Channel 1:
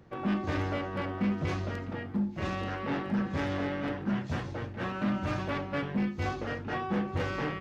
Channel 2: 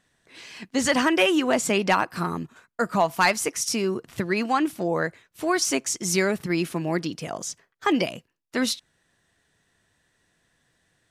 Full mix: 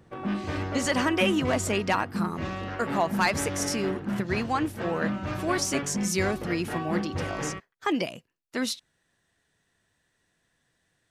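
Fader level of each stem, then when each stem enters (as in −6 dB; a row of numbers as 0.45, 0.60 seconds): 0.0, −4.5 decibels; 0.00, 0.00 seconds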